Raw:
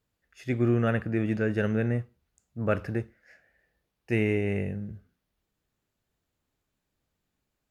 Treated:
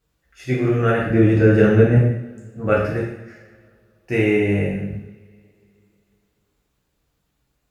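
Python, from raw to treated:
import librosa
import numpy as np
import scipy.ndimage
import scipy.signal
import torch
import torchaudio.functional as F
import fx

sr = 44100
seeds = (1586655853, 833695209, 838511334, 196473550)

y = fx.low_shelf(x, sr, hz=450.0, db=9.5, at=(1.1, 1.97))
y = fx.rev_double_slope(y, sr, seeds[0], early_s=0.76, late_s=3.0, knee_db=-26, drr_db=-5.0)
y = y * librosa.db_to_amplitude(3.0)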